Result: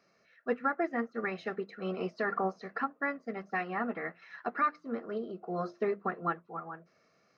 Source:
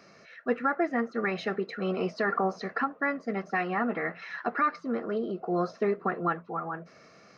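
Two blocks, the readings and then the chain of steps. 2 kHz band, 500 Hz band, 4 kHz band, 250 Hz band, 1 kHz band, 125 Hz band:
-4.5 dB, -5.0 dB, -8.5 dB, -6.0 dB, -4.0 dB, -6.0 dB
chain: hum notches 50/100/150/200/250/300/350 Hz; upward expansion 1.5:1, over -46 dBFS; trim -2 dB

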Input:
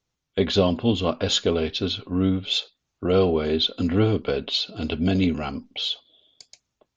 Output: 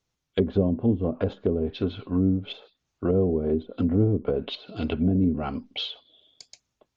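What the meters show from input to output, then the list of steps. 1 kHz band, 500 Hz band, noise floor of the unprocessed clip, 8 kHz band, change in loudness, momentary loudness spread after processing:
-7.0 dB, -3.0 dB, -81 dBFS, no reading, -2.5 dB, 9 LU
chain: low-pass that closes with the level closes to 390 Hz, closed at -18 dBFS

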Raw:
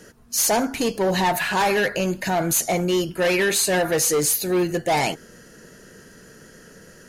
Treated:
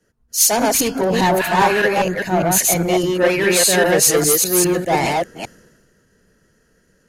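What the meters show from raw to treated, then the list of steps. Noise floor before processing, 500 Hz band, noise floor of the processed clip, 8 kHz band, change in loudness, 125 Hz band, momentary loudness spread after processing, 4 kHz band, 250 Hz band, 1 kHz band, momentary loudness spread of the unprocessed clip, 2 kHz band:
-48 dBFS, +5.0 dB, -60 dBFS, +7.0 dB, +5.5 dB, +5.0 dB, 7 LU, +5.0 dB, +4.5 dB, +5.5 dB, 5 LU, +4.5 dB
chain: chunks repeated in reverse 202 ms, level -0.5 dB; three bands expanded up and down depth 70%; trim +2.5 dB

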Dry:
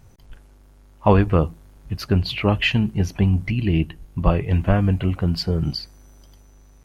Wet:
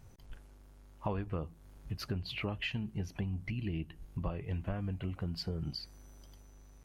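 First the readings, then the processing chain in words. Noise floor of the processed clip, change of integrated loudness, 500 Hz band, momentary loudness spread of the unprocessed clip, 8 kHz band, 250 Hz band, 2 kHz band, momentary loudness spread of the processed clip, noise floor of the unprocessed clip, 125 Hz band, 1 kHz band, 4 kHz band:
-57 dBFS, -17.5 dB, -19.5 dB, 10 LU, no reading, -18.0 dB, -16.0 dB, 20 LU, -50 dBFS, -17.5 dB, -19.5 dB, -14.5 dB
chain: compression 4:1, threshold -29 dBFS, peak gain reduction 16 dB; trim -6.5 dB

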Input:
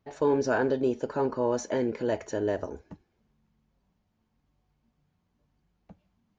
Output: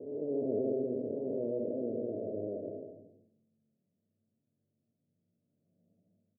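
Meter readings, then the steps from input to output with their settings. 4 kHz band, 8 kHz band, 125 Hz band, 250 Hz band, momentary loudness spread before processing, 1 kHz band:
under -35 dB, no reading, -9.0 dB, -6.0 dB, 7 LU, under -20 dB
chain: spectral blur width 447 ms; Chebyshev band-pass 100–650 Hz, order 5; peaking EQ 140 Hz -6 dB 0.47 oct; on a send: delay 131 ms -4 dB; on the sum: trim -4 dB

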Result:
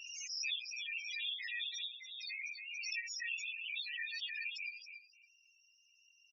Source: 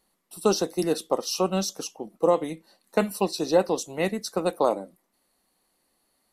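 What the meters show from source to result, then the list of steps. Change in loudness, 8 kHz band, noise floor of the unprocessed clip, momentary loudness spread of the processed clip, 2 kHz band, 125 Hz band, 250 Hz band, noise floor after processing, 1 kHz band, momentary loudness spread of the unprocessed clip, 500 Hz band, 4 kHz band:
-13.5 dB, -13.5 dB, -73 dBFS, 6 LU, 0.0 dB, under -40 dB, under -40 dB, -70 dBFS, under -40 dB, 13 LU, under -40 dB, -4.0 dB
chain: frequency axis rescaled in octaves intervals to 84%; elliptic high-pass 2.1 kHz, stop band 50 dB; spectral gate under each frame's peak -15 dB strong; treble shelf 3.5 kHz -9 dB; compression 4:1, threshold -55 dBFS, peak gain reduction 17.5 dB; feedback delay 279 ms, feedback 21%, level -9 dB; loudest bins only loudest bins 8; swell ahead of each attack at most 28 dB/s; trim +17 dB

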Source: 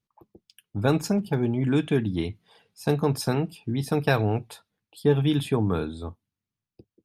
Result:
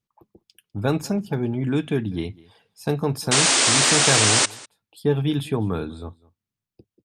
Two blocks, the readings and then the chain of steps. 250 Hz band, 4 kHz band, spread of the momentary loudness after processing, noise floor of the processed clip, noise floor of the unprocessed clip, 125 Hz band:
0.0 dB, +16.0 dB, 16 LU, under -85 dBFS, under -85 dBFS, 0.0 dB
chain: painted sound noise, 3.31–4.46 s, 230–9500 Hz -18 dBFS; delay 200 ms -23 dB

